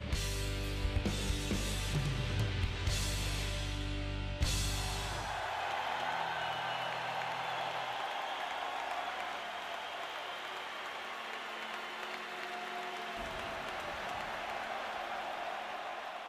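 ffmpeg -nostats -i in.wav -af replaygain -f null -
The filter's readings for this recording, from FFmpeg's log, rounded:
track_gain = +20.5 dB
track_peak = 0.062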